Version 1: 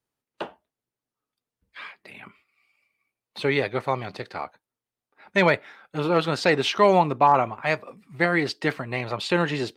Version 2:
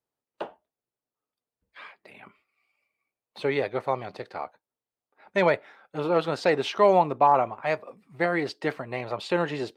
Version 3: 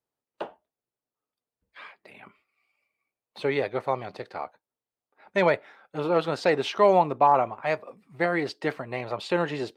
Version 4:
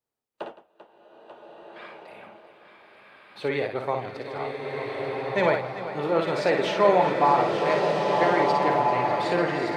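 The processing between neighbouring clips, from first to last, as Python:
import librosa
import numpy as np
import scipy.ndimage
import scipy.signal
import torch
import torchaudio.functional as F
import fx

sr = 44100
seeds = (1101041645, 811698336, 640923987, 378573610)

y1 = fx.peak_eq(x, sr, hz=610.0, db=7.5, octaves=1.9)
y1 = y1 * 10.0 ** (-7.5 / 20.0)
y2 = y1
y3 = fx.echo_multitap(y2, sr, ms=(55, 64, 165, 392, 890), db=(-6.0, -11.5, -17.0, -14.0, -11.5))
y3 = fx.rev_bloom(y3, sr, seeds[0], attack_ms=1580, drr_db=1.0)
y3 = y3 * 10.0 ** (-1.5 / 20.0)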